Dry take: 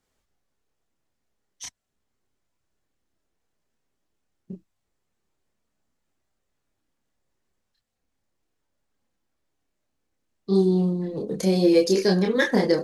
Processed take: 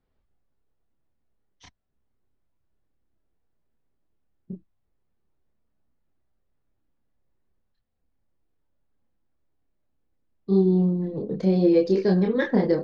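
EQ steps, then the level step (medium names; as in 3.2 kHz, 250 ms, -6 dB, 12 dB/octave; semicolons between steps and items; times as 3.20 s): tape spacing loss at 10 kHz 39 dB; bass shelf 130 Hz +6.5 dB; peaking EQ 4.3 kHz +5.5 dB 0.93 oct; 0.0 dB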